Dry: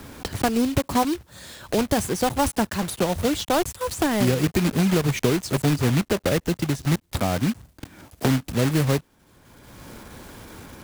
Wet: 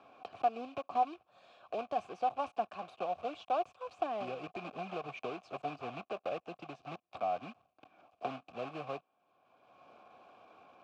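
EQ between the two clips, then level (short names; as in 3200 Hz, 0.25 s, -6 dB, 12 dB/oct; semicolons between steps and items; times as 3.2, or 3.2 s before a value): vowel filter a; HPF 77 Hz; LPF 5200 Hz 12 dB/oct; -2.5 dB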